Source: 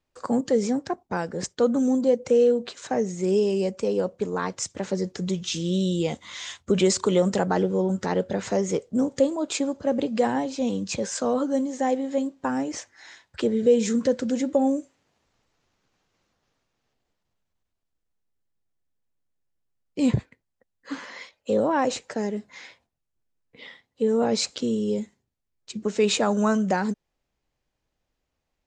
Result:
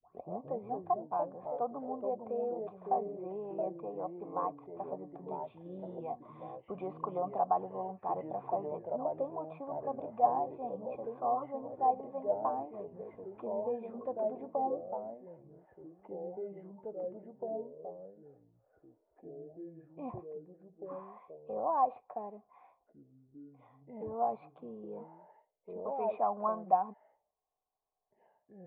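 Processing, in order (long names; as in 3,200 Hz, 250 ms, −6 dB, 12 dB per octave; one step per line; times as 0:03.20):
turntable start at the beginning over 0.42 s
formant resonators in series a
delay with pitch and tempo change per echo 121 ms, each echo −3 semitones, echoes 3, each echo −6 dB
level +3.5 dB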